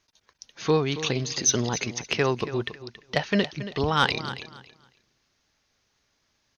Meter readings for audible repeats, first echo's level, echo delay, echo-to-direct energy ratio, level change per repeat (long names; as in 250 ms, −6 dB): 2, −13.5 dB, 277 ms, −13.5 dB, −13.0 dB